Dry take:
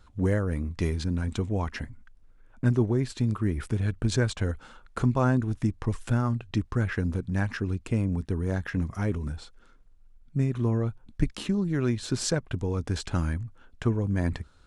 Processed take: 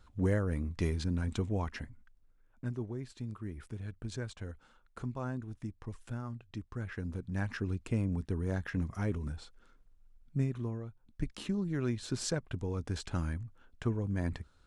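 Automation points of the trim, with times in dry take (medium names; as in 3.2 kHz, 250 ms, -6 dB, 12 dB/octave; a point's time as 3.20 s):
1.49 s -4.5 dB
2.74 s -14.5 dB
6.63 s -14.5 dB
7.61 s -5.5 dB
10.42 s -5.5 dB
10.87 s -16 dB
11.44 s -7 dB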